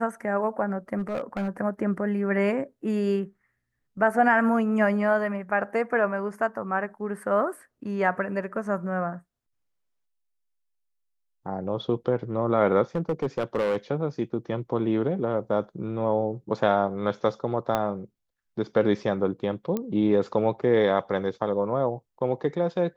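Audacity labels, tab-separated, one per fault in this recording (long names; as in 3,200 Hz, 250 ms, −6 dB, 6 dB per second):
0.980000	1.490000	clipping −24 dBFS
12.950000	13.770000	clipping −20.5 dBFS
17.750000	17.750000	click −11 dBFS
19.770000	19.770000	click −16 dBFS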